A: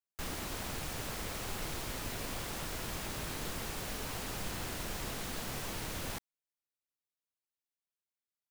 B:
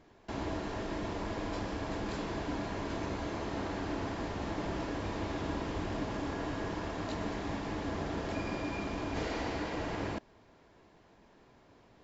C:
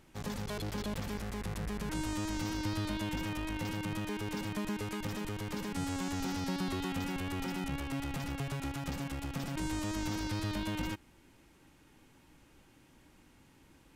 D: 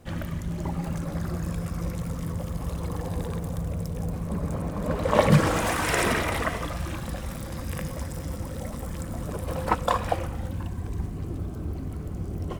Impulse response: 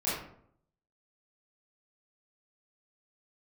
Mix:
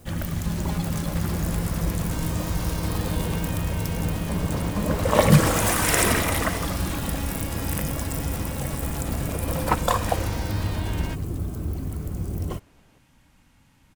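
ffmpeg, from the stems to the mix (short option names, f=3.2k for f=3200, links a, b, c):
-filter_complex "[0:a]volume=-3dB[a];[1:a]adelay=950,volume=-2dB[b];[2:a]equalizer=f=370:t=o:w=0.65:g=-13,adelay=200,volume=2.5dB[c];[3:a]aemphasis=mode=production:type=50kf,volume=0.5dB[d];[a][b][c][d]amix=inputs=4:normalize=0,lowshelf=f=230:g=3.5"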